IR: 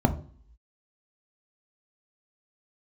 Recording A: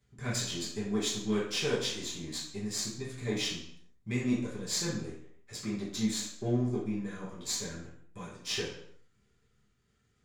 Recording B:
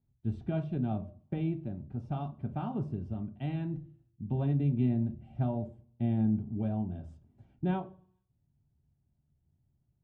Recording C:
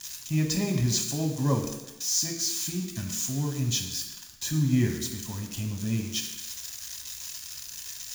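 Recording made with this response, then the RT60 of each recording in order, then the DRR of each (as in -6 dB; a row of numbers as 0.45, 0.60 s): B; 0.65 s, 0.45 s, not exponential; -9.5, 6.0, 1.5 dB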